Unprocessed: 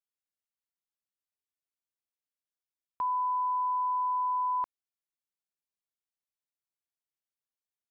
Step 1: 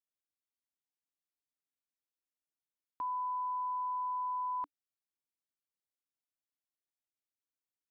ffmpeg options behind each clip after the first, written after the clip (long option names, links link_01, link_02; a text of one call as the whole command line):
ffmpeg -i in.wav -af "equalizer=frequency=290:width=4:gain=10,volume=-6.5dB" out.wav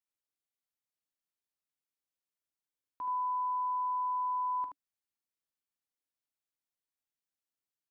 ffmpeg -i in.wav -af "aecho=1:1:17|44|76:0.168|0.211|0.501,volume=-2.5dB" out.wav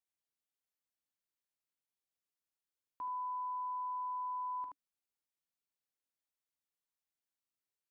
ffmpeg -i in.wav -af "alimiter=level_in=9dB:limit=-24dB:level=0:latency=1,volume=-9dB,volume=-3dB" out.wav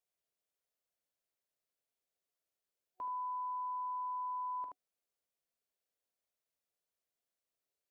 ffmpeg -i in.wav -af "superequalizer=7b=2.24:8b=2.51" out.wav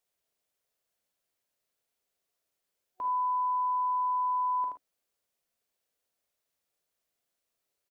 ffmpeg -i in.wav -af "aecho=1:1:39|53:0.282|0.282,volume=6.5dB" out.wav